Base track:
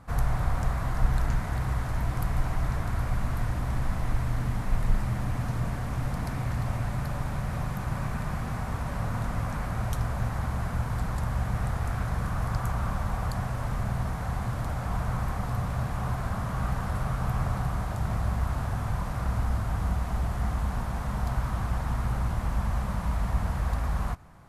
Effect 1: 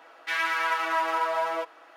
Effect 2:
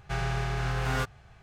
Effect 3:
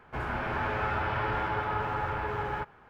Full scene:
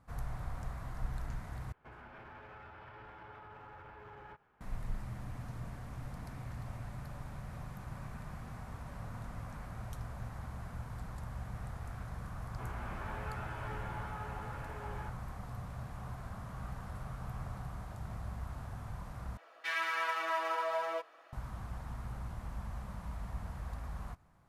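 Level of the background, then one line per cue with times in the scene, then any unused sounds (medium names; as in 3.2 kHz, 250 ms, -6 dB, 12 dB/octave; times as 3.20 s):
base track -14 dB
1.72 s: replace with 3 -14.5 dB + peak limiter -29.5 dBFS
12.45 s: add 3 -11 dB + chorus 0.93 Hz, delay 15.5 ms, depth 2.3 ms
19.37 s: replace with 1 -8 dB + comb 1.7 ms, depth 30%
not used: 2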